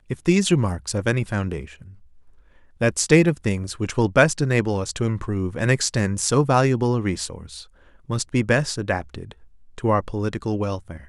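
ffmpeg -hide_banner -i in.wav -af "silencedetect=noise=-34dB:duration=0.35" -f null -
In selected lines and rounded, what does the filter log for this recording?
silence_start: 1.82
silence_end: 2.81 | silence_duration: 0.99
silence_start: 7.64
silence_end: 8.10 | silence_duration: 0.46
silence_start: 9.32
silence_end: 9.78 | silence_duration: 0.46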